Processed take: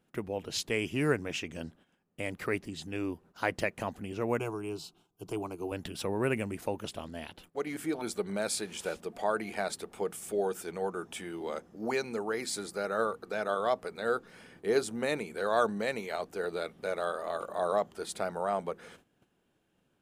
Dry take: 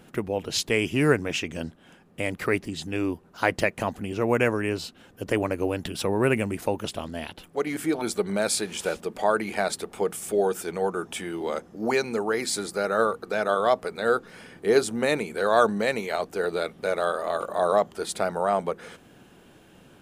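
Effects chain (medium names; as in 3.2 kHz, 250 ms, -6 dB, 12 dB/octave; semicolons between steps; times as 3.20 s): 9.12–9.61 s: whistle 700 Hz -47 dBFS; gate -49 dBFS, range -14 dB; 4.39–5.72 s: static phaser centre 360 Hz, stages 8; trim -7.5 dB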